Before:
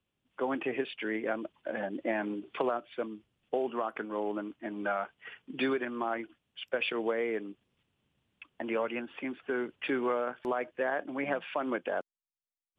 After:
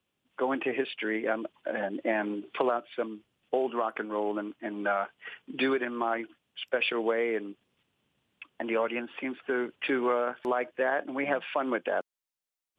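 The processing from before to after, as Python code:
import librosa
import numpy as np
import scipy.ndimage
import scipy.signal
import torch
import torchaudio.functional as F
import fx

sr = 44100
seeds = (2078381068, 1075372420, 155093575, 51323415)

y = fx.low_shelf(x, sr, hz=120.0, db=-11.0)
y = F.gain(torch.from_numpy(y), 4.0).numpy()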